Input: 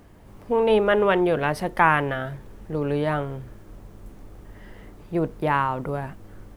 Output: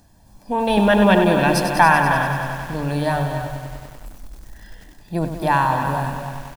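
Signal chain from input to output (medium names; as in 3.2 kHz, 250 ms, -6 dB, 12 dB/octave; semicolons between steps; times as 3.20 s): 0.77–1.54 s: graphic EQ with 31 bands 200 Hz +9 dB, 315 Hz +10 dB, 2.5 kHz +4 dB; spectral noise reduction 8 dB; resonant high shelf 3.4 kHz +8.5 dB, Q 1.5; hum notches 50/100/150 Hz; comb 1.2 ms, depth 65%; echo from a far wall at 46 m, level -9 dB; bit-crushed delay 97 ms, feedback 80%, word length 7-bit, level -8.5 dB; trim +2.5 dB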